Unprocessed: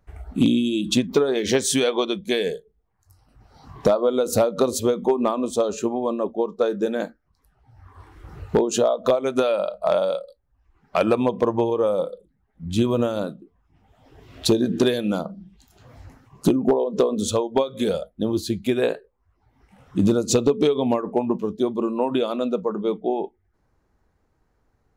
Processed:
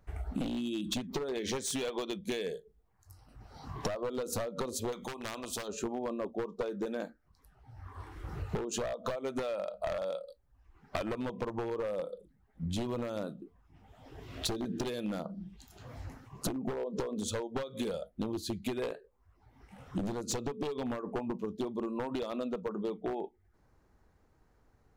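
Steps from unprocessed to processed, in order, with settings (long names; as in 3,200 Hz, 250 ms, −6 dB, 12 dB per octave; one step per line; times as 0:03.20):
wavefolder on the positive side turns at −16 dBFS
downward compressor 12 to 1, threshold −32 dBFS, peak gain reduction 17.5 dB
0:04.92–0:05.68: every bin compressed towards the loudest bin 2 to 1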